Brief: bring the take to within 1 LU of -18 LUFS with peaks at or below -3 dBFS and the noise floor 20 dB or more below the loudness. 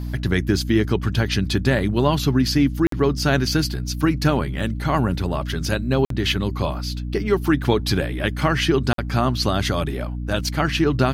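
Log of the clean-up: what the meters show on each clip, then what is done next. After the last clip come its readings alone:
dropouts 3; longest dropout 53 ms; hum 60 Hz; highest harmonic 300 Hz; hum level -25 dBFS; loudness -21.5 LUFS; peak level -5.0 dBFS; loudness target -18.0 LUFS
-> interpolate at 2.87/6.05/8.93 s, 53 ms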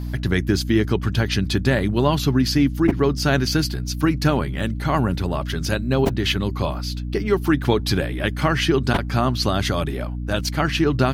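dropouts 0; hum 60 Hz; highest harmonic 300 Hz; hum level -25 dBFS
-> de-hum 60 Hz, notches 5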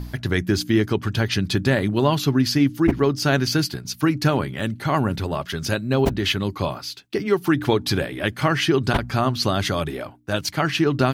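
hum not found; loudness -22.0 LUFS; peak level -5.5 dBFS; loudness target -18.0 LUFS
-> trim +4 dB; peak limiter -3 dBFS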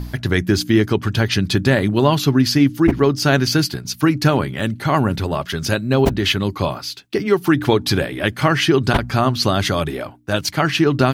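loudness -18.0 LUFS; peak level -3.0 dBFS; noise floor -38 dBFS

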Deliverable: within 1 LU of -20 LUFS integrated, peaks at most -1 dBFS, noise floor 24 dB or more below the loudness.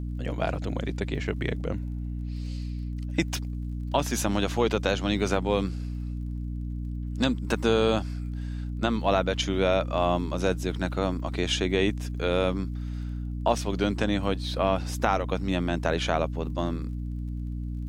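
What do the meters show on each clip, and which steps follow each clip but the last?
tick rate 29 per s; hum 60 Hz; highest harmonic 300 Hz; hum level -30 dBFS; loudness -28.0 LUFS; peak level -4.5 dBFS; loudness target -20.0 LUFS
-> de-click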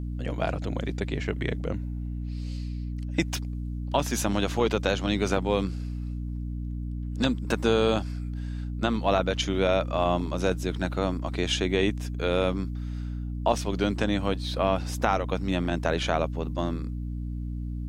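tick rate 0 per s; hum 60 Hz; highest harmonic 300 Hz; hum level -30 dBFS
-> de-hum 60 Hz, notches 5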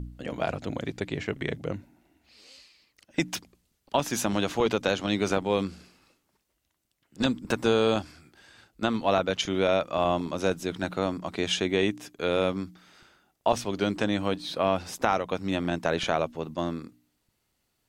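hum not found; loudness -28.0 LUFS; peak level -5.0 dBFS; loudness target -20.0 LUFS
-> trim +8 dB; peak limiter -1 dBFS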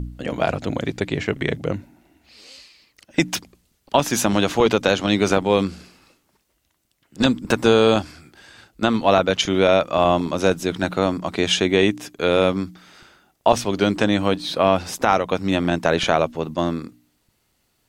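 loudness -20.5 LUFS; peak level -1.0 dBFS; noise floor -68 dBFS

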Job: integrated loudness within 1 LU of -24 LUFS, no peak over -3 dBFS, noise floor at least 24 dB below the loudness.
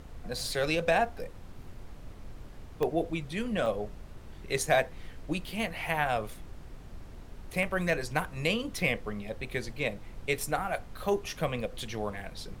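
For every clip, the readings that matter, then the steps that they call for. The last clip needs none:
dropouts 6; longest dropout 1.1 ms; noise floor -47 dBFS; noise floor target -56 dBFS; loudness -32.0 LUFS; peak level -11.0 dBFS; loudness target -24.0 LUFS
-> interpolate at 0.43/2.83/3.66/4.58/5.49/7.63 s, 1.1 ms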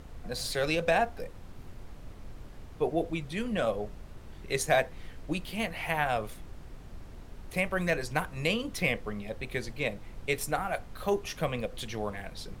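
dropouts 0; noise floor -47 dBFS; noise floor target -56 dBFS
-> noise print and reduce 9 dB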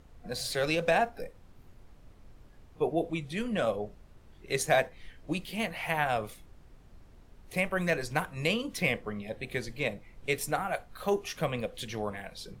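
noise floor -56 dBFS; loudness -32.0 LUFS; peak level -11.5 dBFS; loudness target -24.0 LUFS
-> trim +8 dB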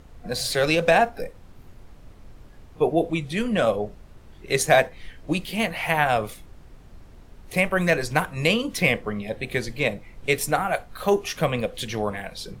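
loudness -24.0 LUFS; peak level -3.5 dBFS; noise floor -48 dBFS

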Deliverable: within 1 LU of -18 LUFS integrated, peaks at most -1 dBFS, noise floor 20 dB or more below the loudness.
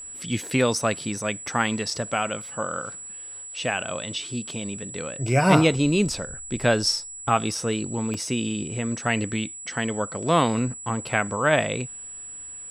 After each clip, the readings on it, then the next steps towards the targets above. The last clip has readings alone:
dropouts 1; longest dropout 3.6 ms; steady tone 7.8 kHz; tone level -36 dBFS; loudness -25.0 LUFS; peak level -3.0 dBFS; loudness target -18.0 LUFS
-> interpolate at 8.14 s, 3.6 ms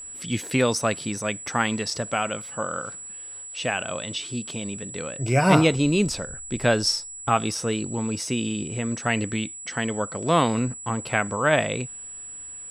dropouts 0; steady tone 7.8 kHz; tone level -36 dBFS
-> band-stop 7.8 kHz, Q 30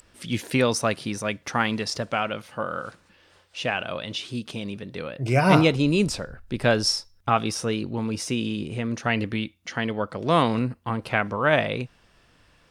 steady tone not found; loudness -25.0 LUFS; peak level -3.0 dBFS; loudness target -18.0 LUFS
-> trim +7 dB; peak limiter -1 dBFS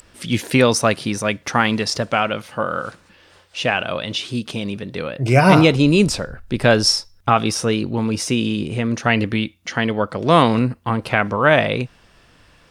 loudness -18.5 LUFS; peak level -1.0 dBFS; noise floor -53 dBFS

